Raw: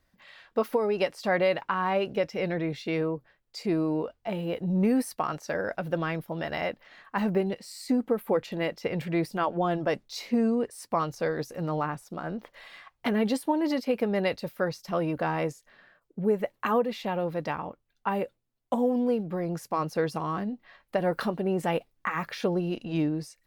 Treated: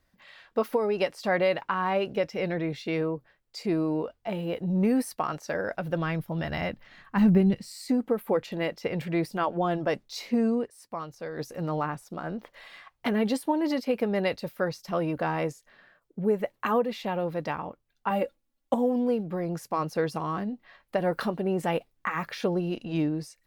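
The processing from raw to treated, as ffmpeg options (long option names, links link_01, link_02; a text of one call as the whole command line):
ffmpeg -i in.wav -filter_complex "[0:a]asettb=1/sr,asplit=3[link_01][link_02][link_03];[link_01]atrim=end=5.724[link_04];[link_02]atrim=start=5.72:end=7.72,asetpts=PTS-STARTPTS,afade=type=in:duration=0.004:curve=qsin,afade=type=out:start_time=1.996:duration=0.004:curve=qsin,asubboost=boost=11:cutoff=210[link_05];[link_03]atrim=start=7.716[link_06];[link_04][link_05]acrossfade=duration=0.004:curve1=hsin:curve2=qsin[link_07];[link_07][link_06]acrossfade=duration=0.004:curve1=qsin:curve2=hsin,asettb=1/sr,asplit=3[link_08][link_09][link_10];[link_08]atrim=end=18.104[link_11];[link_09]atrim=start=18.1:end=18.74,asetpts=PTS-STARTPTS,afade=type=in:duration=0.004:curve=qsin,afade=type=out:start_time=0.636:duration=0.004:curve=qsin,aecho=1:1:3.6:0.87,atrim=end_sample=28224[link_12];[link_10]atrim=start=18.736[link_13];[link_11][link_12]acrossfade=duration=0.004:curve1=hsin:curve2=qsin[link_14];[link_14][link_13]acrossfade=duration=0.004:curve1=qsin:curve2=hsin,asplit=3[link_15][link_16][link_17];[link_15]atrim=end=10.7,asetpts=PTS-STARTPTS,afade=type=out:start_time=10.57:duration=0.13:silence=0.375837[link_18];[link_16]atrim=start=10.7:end=11.31,asetpts=PTS-STARTPTS,volume=-8.5dB[link_19];[link_17]atrim=start=11.31,asetpts=PTS-STARTPTS,afade=type=in:duration=0.13:silence=0.375837[link_20];[link_18][link_19][link_20]concat=n=3:v=0:a=1" out.wav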